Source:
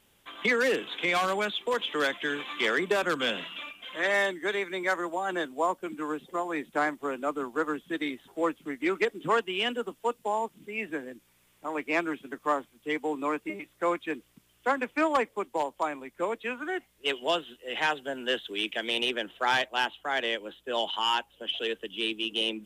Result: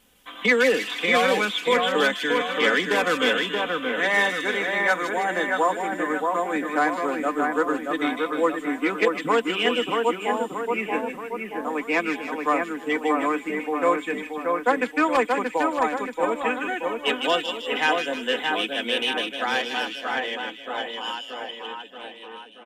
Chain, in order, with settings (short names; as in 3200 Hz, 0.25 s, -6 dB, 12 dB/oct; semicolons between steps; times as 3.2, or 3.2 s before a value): ending faded out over 4.86 s; comb 4 ms, depth 54%; split-band echo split 2200 Hz, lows 0.629 s, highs 0.155 s, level -3.5 dB; gain +3.5 dB